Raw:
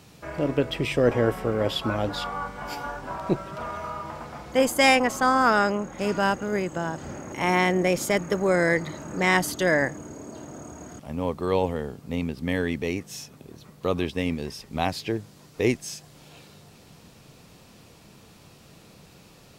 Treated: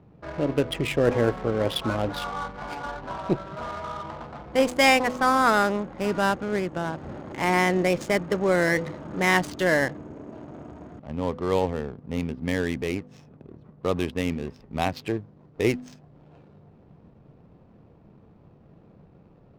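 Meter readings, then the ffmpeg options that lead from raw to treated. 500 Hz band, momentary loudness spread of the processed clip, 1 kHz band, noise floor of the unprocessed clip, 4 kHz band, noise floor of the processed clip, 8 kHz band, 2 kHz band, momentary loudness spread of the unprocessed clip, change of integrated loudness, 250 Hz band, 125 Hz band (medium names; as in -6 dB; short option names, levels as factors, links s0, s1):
0.0 dB, 16 LU, 0.0 dB, -52 dBFS, -0.5 dB, -54 dBFS, -3.5 dB, 0.0 dB, 17 LU, 0.0 dB, 0.0 dB, 0.0 dB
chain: -af "bandreject=f=250.5:t=h:w=4,bandreject=f=501:t=h:w=4,adynamicsmooth=sensitivity=7.5:basefreq=600"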